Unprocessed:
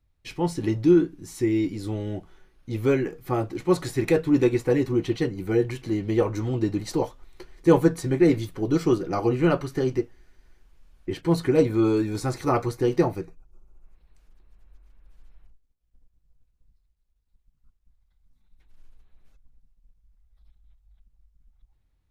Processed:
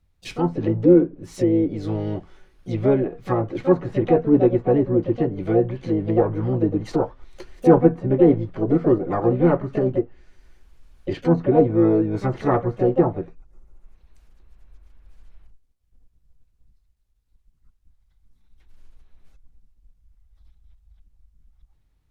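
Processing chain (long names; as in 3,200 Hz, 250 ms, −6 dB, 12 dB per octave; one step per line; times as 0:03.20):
treble cut that deepens with the level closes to 990 Hz, closed at −21.5 dBFS
pitch-shifted copies added +7 semitones −9 dB
level +3.5 dB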